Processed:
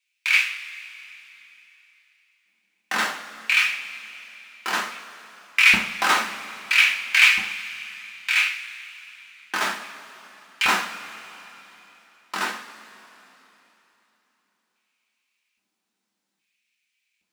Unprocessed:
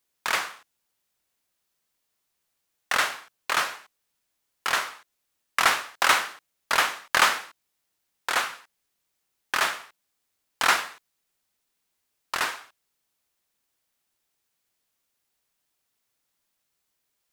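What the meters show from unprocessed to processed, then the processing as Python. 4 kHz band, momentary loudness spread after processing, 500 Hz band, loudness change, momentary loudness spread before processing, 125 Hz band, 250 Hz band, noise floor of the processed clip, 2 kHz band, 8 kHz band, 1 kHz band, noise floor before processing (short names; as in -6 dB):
+4.0 dB, 22 LU, -3.0 dB, +4.5 dB, 15 LU, n/a, +7.0 dB, -79 dBFS, +6.0 dB, -1.0 dB, -2.0 dB, -78 dBFS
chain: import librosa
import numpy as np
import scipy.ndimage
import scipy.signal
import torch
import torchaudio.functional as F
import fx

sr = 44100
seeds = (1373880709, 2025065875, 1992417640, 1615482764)

y = scipy.signal.medfilt(x, 3)
y = fx.filter_lfo_highpass(y, sr, shape='square', hz=0.61, low_hz=210.0, high_hz=2400.0, q=6.9)
y = fx.rev_double_slope(y, sr, seeds[0], early_s=0.3, late_s=3.5, knee_db=-19, drr_db=-1.5)
y = y * librosa.db_to_amplitude(-3.5)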